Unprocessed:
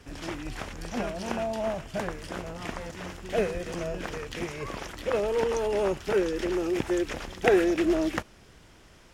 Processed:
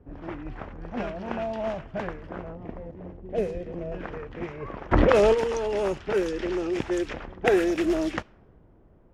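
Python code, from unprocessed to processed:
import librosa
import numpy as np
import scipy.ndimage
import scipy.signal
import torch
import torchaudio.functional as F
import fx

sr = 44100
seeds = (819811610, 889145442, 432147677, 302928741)

y = fx.env_lowpass(x, sr, base_hz=560.0, full_db=-21.0)
y = fx.curve_eq(y, sr, hz=(520.0, 1400.0, 2000.0), db=(0, -14, -9), at=(2.55, 3.92))
y = fx.env_flatten(y, sr, amount_pct=100, at=(4.91, 5.33), fade=0.02)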